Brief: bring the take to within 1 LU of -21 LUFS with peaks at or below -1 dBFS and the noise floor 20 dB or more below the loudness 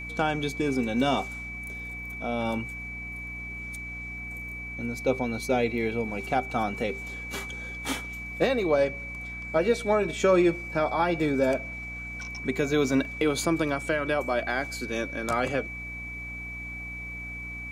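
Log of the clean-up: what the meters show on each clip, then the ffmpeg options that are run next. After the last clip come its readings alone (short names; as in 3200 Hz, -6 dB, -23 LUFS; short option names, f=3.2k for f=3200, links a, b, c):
hum 60 Hz; harmonics up to 300 Hz; hum level -40 dBFS; steady tone 2300 Hz; tone level -36 dBFS; loudness -28.5 LUFS; peak -10.5 dBFS; loudness target -21.0 LUFS
-> -af "bandreject=f=60:t=h:w=6,bandreject=f=120:t=h:w=6,bandreject=f=180:t=h:w=6,bandreject=f=240:t=h:w=6,bandreject=f=300:t=h:w=6"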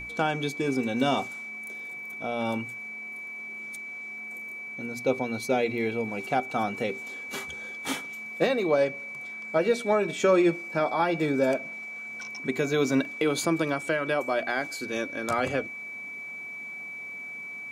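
hum none; steady tone 2300 Hz; tone level -36 dBFS
-> -af "bandreject=f=2.3k:w=30"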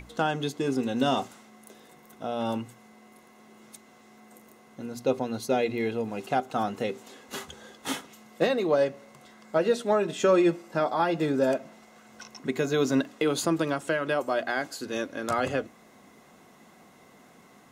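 steady tone none; loudness -28.0 LUFS; peak -11.0 dBFS; loudness target -21.0 LUFS
-> -af "volume=7dB"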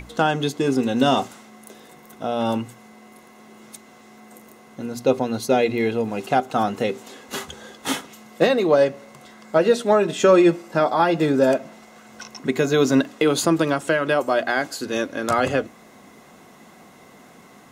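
loudness -21.0 LUFS; peak -4.0 dBFS; noise floor -49 dBFS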